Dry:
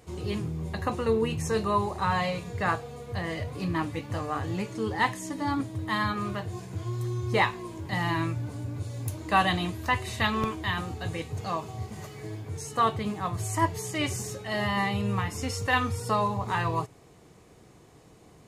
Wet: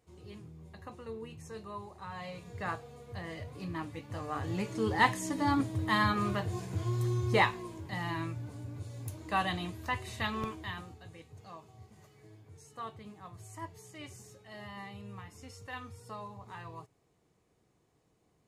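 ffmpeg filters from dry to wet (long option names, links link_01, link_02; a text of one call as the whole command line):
ffmpeg -i in.wav -af "afade=type=in:start_time=2.12:duration=0.45:silence=0.398107,afade=type=in:start_time=4.08:duration=0.91:silence=0.334965,afade=type=out:start_time=7.13:duration=0.8:silence=0.398107,afade=type=out:start_time=10.48:duration=0.56:silence=0.316228" out.wav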